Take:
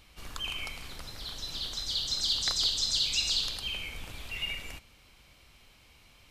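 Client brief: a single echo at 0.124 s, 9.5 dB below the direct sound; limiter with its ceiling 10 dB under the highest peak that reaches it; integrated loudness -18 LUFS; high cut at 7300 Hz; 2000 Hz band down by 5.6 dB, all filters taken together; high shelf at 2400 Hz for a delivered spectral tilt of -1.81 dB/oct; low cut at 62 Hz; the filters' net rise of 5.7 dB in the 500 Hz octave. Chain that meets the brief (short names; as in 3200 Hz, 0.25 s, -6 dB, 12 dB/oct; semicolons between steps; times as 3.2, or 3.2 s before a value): HPF 62 Hz; LPF 7300 Hz; bell 500 Hz +7.5 dB; bell 2000 Hz -5 dB; high shelf 2400 Hz -4.5 dB; limiter -30 dBFS; echo 0.124 s -9.5 dB; gain +20.5 dB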